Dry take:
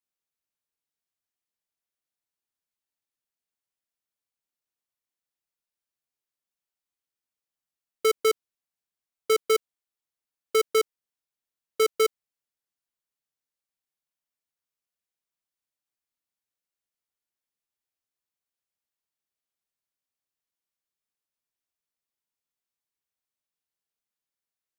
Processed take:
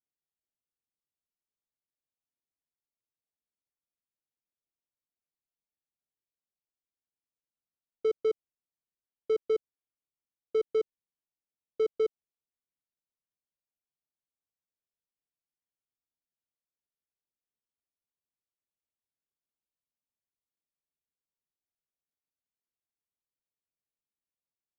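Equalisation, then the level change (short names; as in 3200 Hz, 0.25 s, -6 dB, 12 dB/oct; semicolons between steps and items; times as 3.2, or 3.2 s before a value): tape spacing loss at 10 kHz 43 dB; bell 1600 Hz -13.5 dB 1.2 oct; -1.5 dB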